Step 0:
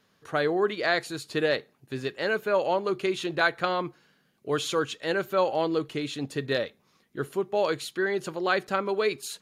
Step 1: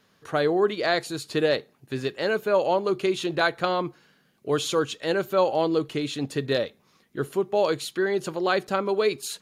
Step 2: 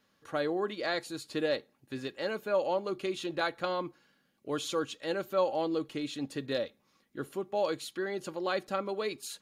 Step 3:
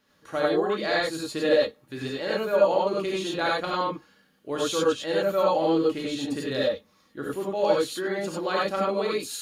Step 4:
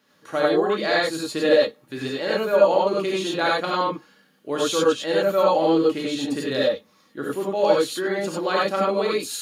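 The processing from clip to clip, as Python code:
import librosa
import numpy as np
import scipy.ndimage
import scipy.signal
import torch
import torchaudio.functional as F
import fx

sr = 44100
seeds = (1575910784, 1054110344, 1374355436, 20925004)

y1 = fx.dynamic_eq(x, sr, hz=1800.0, q=1.1, threshold_db=-41.0, ratio=4.0, max_db=-5)
y1 = y1 * 10.0 ** (3.5 / 20.0)
y2 = y1 + 0.35 * np.pad(y1, (int(3.6 * sr / 1000.0), 0))[:len(y1)]
y2 = y2 * 10.0 ** (-8.5 / 20.0)
y3 = fx.rev_gated(y2, sr, seeds[0], gate_ms=120, shape='rising', drr_db=-4.0)
y3 = y3 * 10.0 ** (2.0 / 20.0)
y4 = scipy.signal.sosfilt(scipy.signal.butter(2, 130.0, 'highpass', fs=sr, output='sos'), y3)
y4 = y4 * 10.0 ** (4.0 / 20.0)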